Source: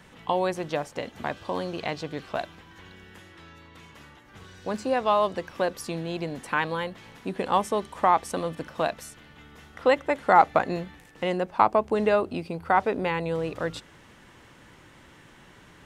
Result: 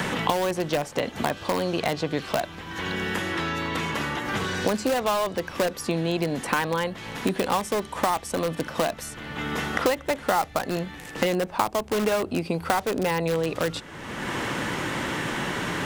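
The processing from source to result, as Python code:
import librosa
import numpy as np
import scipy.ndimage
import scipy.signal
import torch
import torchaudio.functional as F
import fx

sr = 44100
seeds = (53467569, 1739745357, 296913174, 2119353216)

p1 = (np.mod(10.0 ** (21.0 / 20.0) * x + 1.0, 2.0) - 1.0) / 10.0 ** (21.0 / 20.0)
p2 = x + (p1 * 10.0 ** (-6.0 / 20.0))
y = fx.band_squash(p2, sr, depth_pct=100)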